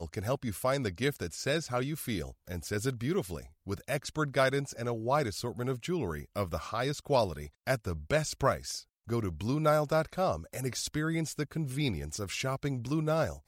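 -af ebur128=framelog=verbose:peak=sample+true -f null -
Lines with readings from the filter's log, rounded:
Integrated loudness:
  I:         -32.6 LUFS
  Threshold: -42.6 LUFS
Loudness range:
  LRA:         2.2 LU
  Threshold: -52.6 LUFS
  LRA low:   -33.6 LUFS
  LRA high:  -31.4 LUFS
Sample peak:
  Peak:      -13.6 dBFS
True peak:
  Peak:      -13.6 dBFS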